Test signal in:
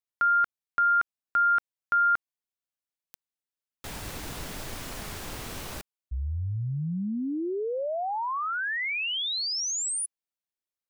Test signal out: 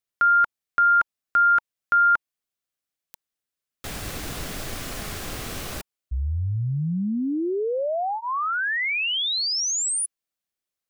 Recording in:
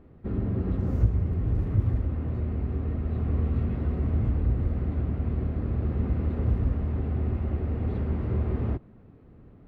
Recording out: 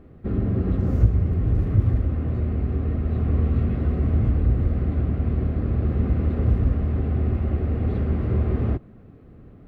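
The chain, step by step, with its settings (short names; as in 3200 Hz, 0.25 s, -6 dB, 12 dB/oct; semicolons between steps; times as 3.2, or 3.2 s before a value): notch 920 Hz, Q 7.3; gain +5 dB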